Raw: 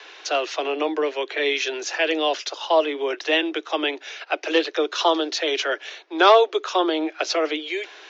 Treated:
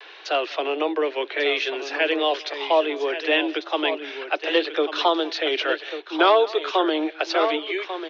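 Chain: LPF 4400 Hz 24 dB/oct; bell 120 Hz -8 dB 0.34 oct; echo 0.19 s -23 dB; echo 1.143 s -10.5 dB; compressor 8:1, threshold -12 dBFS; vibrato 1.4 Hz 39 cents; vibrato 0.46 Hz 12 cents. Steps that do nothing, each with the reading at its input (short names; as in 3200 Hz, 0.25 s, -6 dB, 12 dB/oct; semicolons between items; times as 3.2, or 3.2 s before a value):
bell 120 Hz: input band starts at 250 Hz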